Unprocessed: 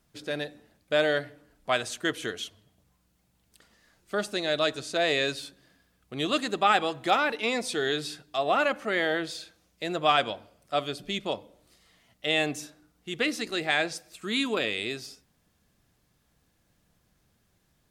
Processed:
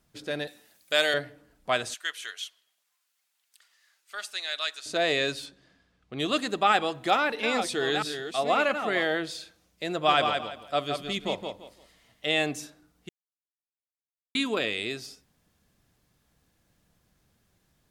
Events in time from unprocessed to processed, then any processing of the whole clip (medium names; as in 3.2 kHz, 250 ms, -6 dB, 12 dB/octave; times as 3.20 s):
0.47–1.14 s: tilt EQ +4 dB/octave
1.94–4.86 s: high-pass 1.5 kHz
5.45–6.18 s: low-pass 7.7 kHz -> 4.3 kHz
6.70–9.05 s: chunks repeated in reverse 663 ms, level -8 dB
9.91–12.28 s: feedback delay 169 ms, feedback 25%, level -5.5 dB
13.09–14.35 s: mute